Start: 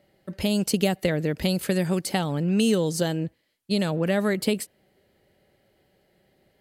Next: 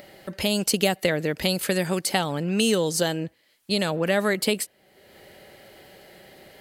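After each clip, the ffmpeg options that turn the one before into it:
ffmpeg -i in.wav -filter_complex "[0:a]lowshelf=frequency=350:gain=-10.5,asplit=2[link_01][link_02];[link_02]acompressor=mode=upward:threshold=-30dB:ratio=2.5,volume=-2dB[link_03];[link_01][link_03]amix=inputs=2:normalize=0" out.wav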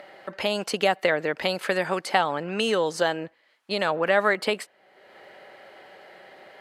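ffmpeg -i in.wav -af "bandpass=frequency=1100:width_type=q:width=1:csg=0,volume=6.5dB" out.wav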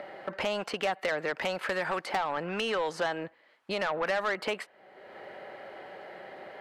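ffmpeg -i in.wav -filter_complex "[0:a]highshelf=frequency=2800:gain=-12,acrossover=split=720|4000[link_01][link_02][link_03];[link_01]acompressor=threshold=-39dB:ratio=4[link_04];[link_02]acompressor=threshold=-29dB:ratio=4[link_05];[link_03]acompressor=threshold=-53dB:ratio=4[link_06];[link_04][link_05][link_06]amix=inputs=3:normalize=0,asoftclip=type=tanh:threshold=-27.5dB,volume=4.5dB" out.wav

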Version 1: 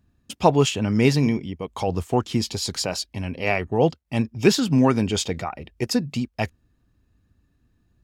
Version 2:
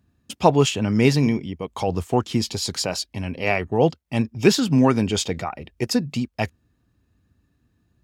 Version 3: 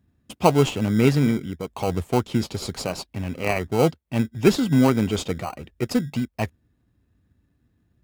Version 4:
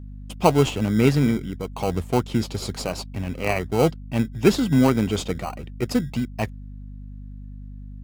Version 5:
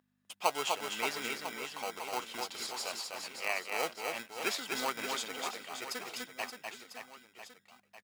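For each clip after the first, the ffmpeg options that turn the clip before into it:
ffmpeg -i in.wav -af "highpass=62,volume=1dB" out.wav
ffmpeg -i in.wav -filter_complex "[0:a]equalizer=frequency=5700:width_type=o:width=1:gain=-5.5,asplit=2[link_01][link_02];[link_02]acrusher=samples=25:mix=1:aa=0.000001,volume=-5dB[link_03];[link_01][link_03]amix=inputs=2:normalize=0,volume=-4dB" out.wav
ffmpeg -i in.wav -af "aeval=exprs='val(0)+0.0158*(sin(2*PI*50*n/s)+sin(2*PI*2*50*n/s)/2+sin(2*PI*3*50*n/s)/3+sin(2*PI*4*50*n/s)/4+sin(2*PI*5*50*n/s)/5)':channel_layout=same" out.wav
ffmpeg -i in.wav -af "highpass=980,aecho=1:1:250|575|997.5|1547|2261:0.631|0.398|0.251|0.158|0.1,volume=-6dB" out.wav

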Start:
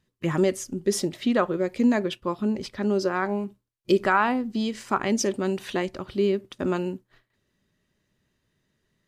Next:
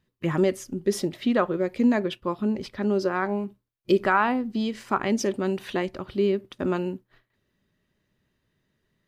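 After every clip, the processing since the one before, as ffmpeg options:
ffmpeg -i in.wav -af "equalizer=frequency=7400:width_type=o:width=1.2:gain=-6.5" out.wav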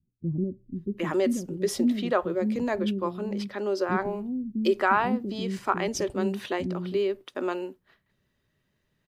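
ffmpeg -i in.wav -filter_complex "[0:a]acrossover=split=290[link_01][link_02];[link_02]adelay=760[link_03];[link_01][link_03]amix=inputs=2:normalize=0,adynamicequalizer=threshold=0.00794:dfrequency=2100:dqfactor=0.85:tfrequency=2100:tqfactor=0.85:attack=5:release=100:ratio=0.375:range=2.5:mode=cutabove:tftype=bell" out.wav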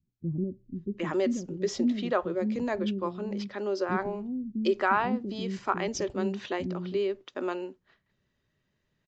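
ffmpeg -i in.wav -af "aresample=16000,aresample=44100,volume=-2.5dB" out.wav

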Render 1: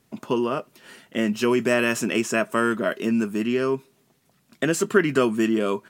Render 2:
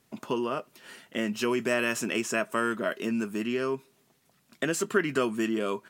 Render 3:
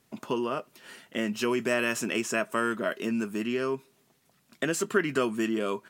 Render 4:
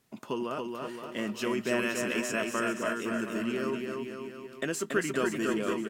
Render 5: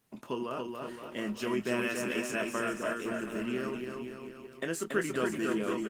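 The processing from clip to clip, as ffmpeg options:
ffmpeg -i in.wav -filter_complex "[0:a]lowshelf=frequency=440:gain=-4.5,asplit=2[link_01][link_02];[link_02]acompressor=threshold=-30dB:ratio=6,volume=-2.5dB[link_03];[link_01][link_03]amix=inputs=2:normalize=0,volume=-6dB" out.wav
ffmpeg -i in.wav -af anull out.wav
ffmpeg -i in.wav -filter_complex "[0:a]aeval=exprs='0.299*(cos(1*acos(clip(val(0)/0.299,-1,1)))-cos(1*PI/2))+0.00237*(cos(4*acos(clip(val(0)/0.299,-1,1)))-cos(4*PI/2))':channel_layout=same,asplit=2[link_01][link_02];[link_02]aecho=0:1:280|518|720.3|892.3|1038:0.631|0.398|0.251|0.158|0.1[link_03];[link_01][link_03]amix=inputs=2:normalize=0,volume=-4dB" out.wav
ffmpeg -i in.wav -filter_complex "[0:a]asplit=2[link_01][link_02];[link_02]adelay=24,volume=-8.5dB[link_03];[link_01][link_03]amix=inputs=2:normalize=0,volume=-2dB" -ar 48000 -c:a libopus -b:a 24k out.opus

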